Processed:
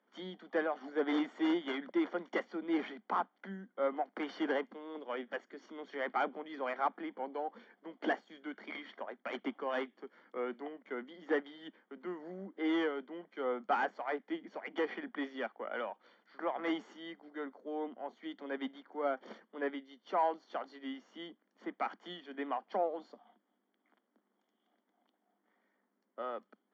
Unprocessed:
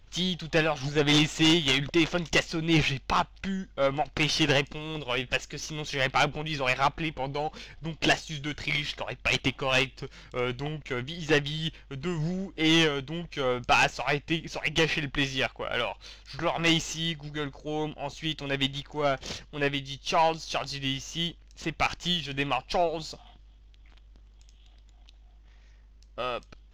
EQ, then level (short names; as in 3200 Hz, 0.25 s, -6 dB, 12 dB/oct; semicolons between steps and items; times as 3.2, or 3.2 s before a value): polynomial smoothing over 41 samples; steep high-pass 200 Hz 96 dB/oct; air absorption 65 m; -7.0 dB